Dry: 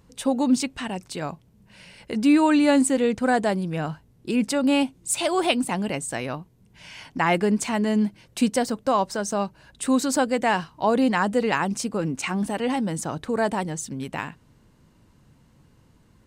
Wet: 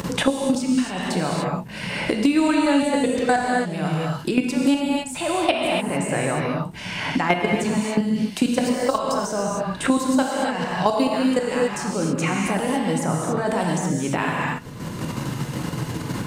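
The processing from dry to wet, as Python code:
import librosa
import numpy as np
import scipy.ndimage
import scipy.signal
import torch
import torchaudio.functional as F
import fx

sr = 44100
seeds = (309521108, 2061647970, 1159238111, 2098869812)

y = fx.level_steps(x, sr, step_db=19)
y = fx.rev_gated(y, sr, seeds[0], gate_ms=310, shape='flat', drr_db=-1.5)
y = fx.band_squash(y, sr, depth_pct=100)
y = y * librosa.db_to_amplitude(4.0)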